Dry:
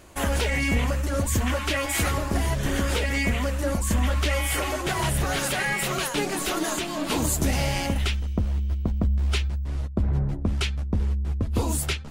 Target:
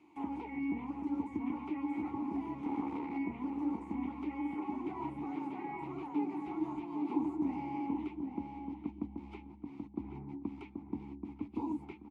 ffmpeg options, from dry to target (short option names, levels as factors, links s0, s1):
-filter_complex "[0:a]highpass=f=92:p=1,asplit=3[s0][s1][s2];[s0]afade=t=out:st=2.61:d=0.02[s3];[s1]aeval=exprs='0.211*(cos(1*acos(clip(val(0)/0.211,-1,1)))-cos(1*PI/2))+0.0531*(cos(4*acos(clip(val(0)/0.211,-1,1)))-cos(4*PI/2))+0.0422*(cos(7*acos(clip(val(0)/0.211,-1,1)))-cos(7*PI/2))+0.0299*(cos(8*acos(clip(val(0)/0.211,-1,1)))-cos(8*PI/2))':c=same,afade=t=in:st=2.61:d=0.02,afade=t=out:st=3.17:d=0.02[s4];[s2]afade=t=in:st=3.17:d=0.02[s5];[s3][s4][s5]amix=inputs=3:normalize=0,acrossover=split=760|1100[s6][s7][s8];[s7]crystalizer=i=9.5:c=0[s9];[s8]acompressor=threshold=0.00562:ratio=10[s10];[s6][s9][s10]amix=inputs=3:normalize=0,asplit=3[s11][s12][s13];[s11]bandpass=f=300:t=q:w=8,volume=1[s14];[s12]bandpass=f=870:t=q:w=8,volume=0.501[s15];[s13]bandpass=f=2240:t=q:w=8,volume=0.355[s16];[s14][s15][s16]amix=inputs=3:normalize=0,asplit=2[s17][s18];[s18]adelay=781,lowpass=f=1500:p=1,volume=0.562,asplit=2[s19][s20];[s20]adelay=781,lowpass=f=1500:p=1,volume=0.25,asplit=2[s21][s22];[s22]adelay=781,lowpass=f=1500:p=1,volume=0.25[s23];[s19][s21][s23]amix=inputs=3:normalize=0[s24];[s17][s24]amix=inputs=2:normalize=0,asplit=3[s25][s26][s27];[s25]afade=t=out:st=6.3:d=0.02[s28];[s26]asubboost=boost=4:cutoff=120,afade=t=in:st=6.3:d=0.02,afade=t=out:st=7.03:d=0.02[s29];[s27]afade=t=in:st=7.03:d=0.02[s30];[s28][s29][s30]amix=inputs=3:normalize=0"